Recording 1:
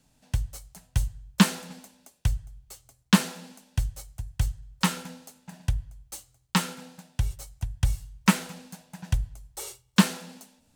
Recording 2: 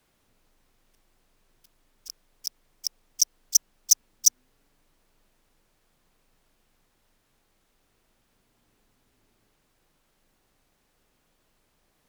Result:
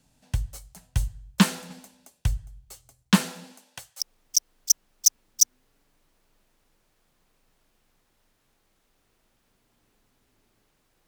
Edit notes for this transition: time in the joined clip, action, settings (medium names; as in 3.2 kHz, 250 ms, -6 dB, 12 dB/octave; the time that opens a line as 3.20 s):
recording 1
3.44–4.00 s: high-pass 190 Hz -> 990 Hz
4.00 s: go over to recording 2 from 2.85 s